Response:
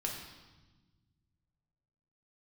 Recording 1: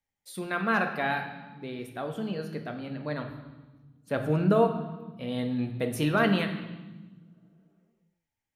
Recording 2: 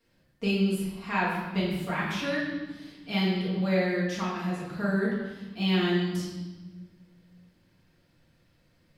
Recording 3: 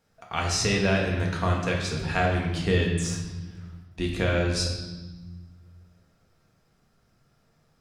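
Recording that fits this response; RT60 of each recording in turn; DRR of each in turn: 3; 1.3 s, 1.2 s, 1.2 s; 5.0 dB, -7.0 dB, -1.0 dB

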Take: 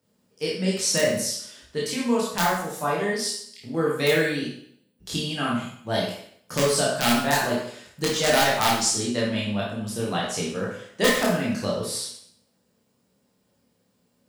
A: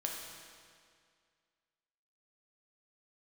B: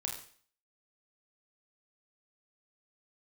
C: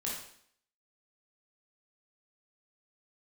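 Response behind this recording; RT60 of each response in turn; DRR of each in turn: C; 2.1 s, 0.50 s, 0.60 s; -1.0 dB, 0.0 dB, -5.0 dB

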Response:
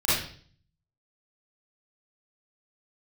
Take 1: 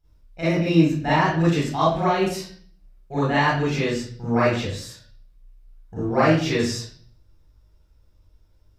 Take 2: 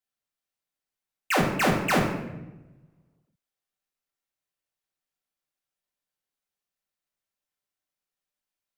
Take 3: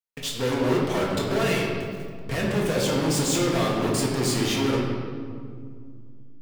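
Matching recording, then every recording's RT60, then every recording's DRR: 1; 0.50 s, 1.0 s, 2.1 s; -11.5 dB, -3.0 dB, -4.0 dB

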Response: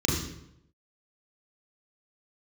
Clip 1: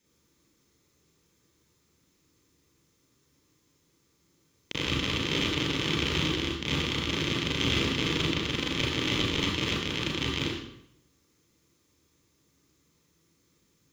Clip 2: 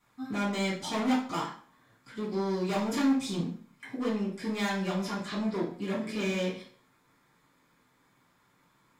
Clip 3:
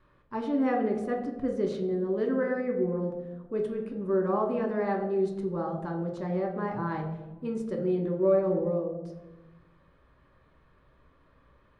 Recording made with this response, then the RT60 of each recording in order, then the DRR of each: 1; 0.80 s, 0.50 s, 1.1 s; -3.5 dB, -11.5 dB, 1.0 dB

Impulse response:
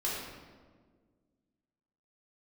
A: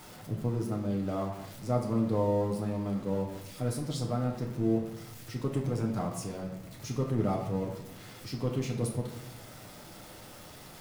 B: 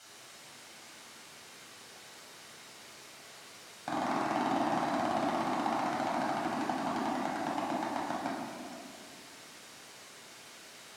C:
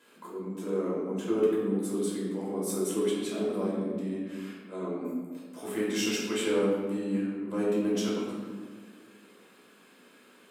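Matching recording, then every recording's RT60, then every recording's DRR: C; 0.95 s, 2.4 s, 1.6 s; -1.0 dB, -7.5 dB, -7.0 dB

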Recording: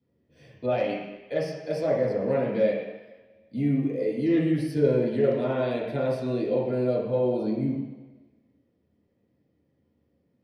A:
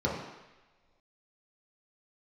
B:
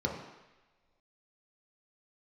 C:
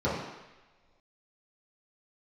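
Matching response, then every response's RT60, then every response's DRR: C; no single decay rate, no single decay rate, no single decay rate; -5.5 dB, -1.5 dB, -10.5 dB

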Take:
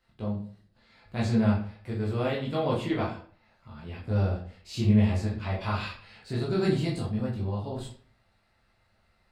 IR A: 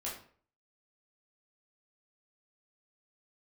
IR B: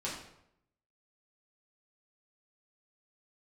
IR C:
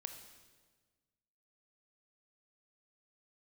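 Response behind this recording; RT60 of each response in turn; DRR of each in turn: A; 0.50 s, 0.75 s, 1.4 s; -6.5 dB, -7.5 dB, 6.0 dB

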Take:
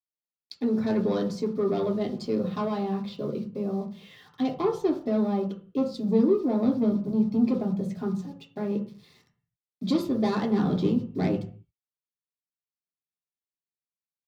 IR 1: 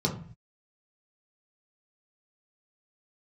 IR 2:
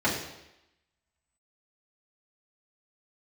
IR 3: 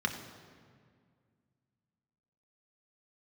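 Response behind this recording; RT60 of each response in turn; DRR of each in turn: 1; 0.45 s, 0.90 s, 2.0 s; -1.5 dB, -8.0 dB, 3.0 dB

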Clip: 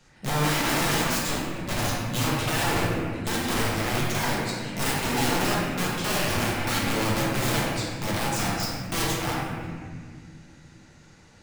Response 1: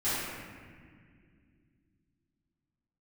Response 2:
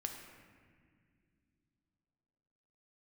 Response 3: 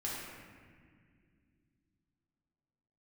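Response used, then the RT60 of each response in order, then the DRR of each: 3; no single decay rate, no single decay rate, no single decay rate; -15.0 dB, 3.0 dB, -6.0 dB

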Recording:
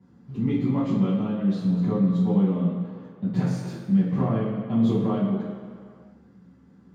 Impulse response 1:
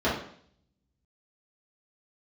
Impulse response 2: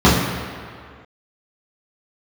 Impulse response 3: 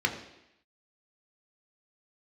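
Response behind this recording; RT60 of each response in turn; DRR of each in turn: 2; 0.60 s, 2.1 s, 0.85 s; -10.0 dB, -10.0 dB, 2.5 dB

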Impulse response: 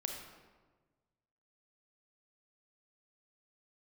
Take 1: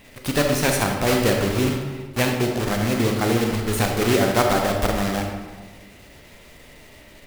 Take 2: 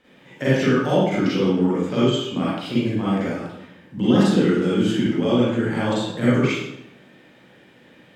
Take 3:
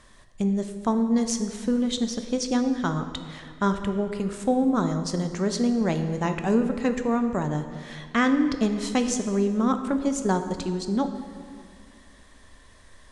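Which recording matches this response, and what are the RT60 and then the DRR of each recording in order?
1; 1.4 s, 0.85 s, 2.1 s; 2.0 dB, -10.5 dB, 7.0 dB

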